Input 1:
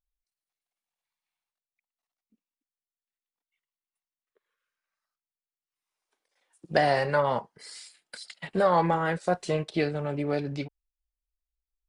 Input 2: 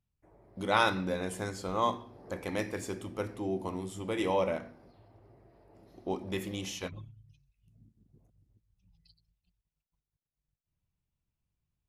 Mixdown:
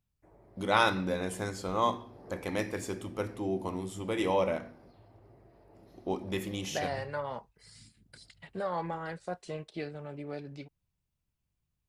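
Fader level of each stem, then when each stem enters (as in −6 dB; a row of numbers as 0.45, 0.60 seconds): −11.5, +1.0 decibels; 0.00, 0.00 seconds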